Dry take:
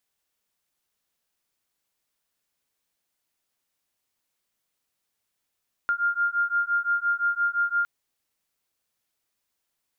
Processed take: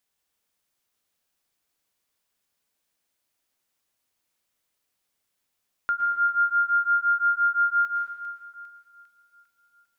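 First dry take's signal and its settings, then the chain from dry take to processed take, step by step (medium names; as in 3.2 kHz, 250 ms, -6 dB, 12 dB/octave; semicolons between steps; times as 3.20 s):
beating tones 1.4 kHz, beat 5.8 Hz, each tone -25 dBFS 1.96 s
on a send: two-band feedback delay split 1.4 kHz, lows 229 ms, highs 401 ms, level -13 dB; on the sum: plate-style reverb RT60 1.5 s, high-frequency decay 0.85×, pre-delay 100 ms, DRR 4.5 dB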